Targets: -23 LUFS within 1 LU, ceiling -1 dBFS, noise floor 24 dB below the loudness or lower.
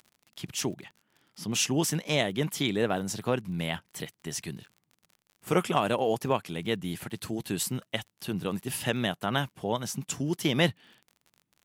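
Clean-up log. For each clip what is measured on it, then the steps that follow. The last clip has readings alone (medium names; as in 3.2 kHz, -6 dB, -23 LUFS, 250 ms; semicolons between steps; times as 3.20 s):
tick rate 43 per s; loudness -30.0 LUFS; peak level -10.0 dBFS; loudness target -23.0 LUFS
-> de-click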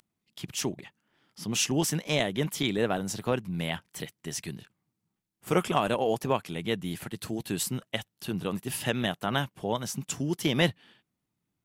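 tick rate 0.26 per s; loudness -30.0 LUFS; peak level -10.0 dBFS; loudness target -23.0 LUFS
-> trim +7 dB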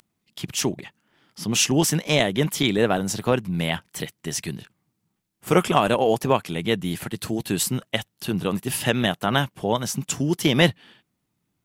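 loudness -23.0 LUFS; peak level -3.0 dBFS; noise floor -76 dBFS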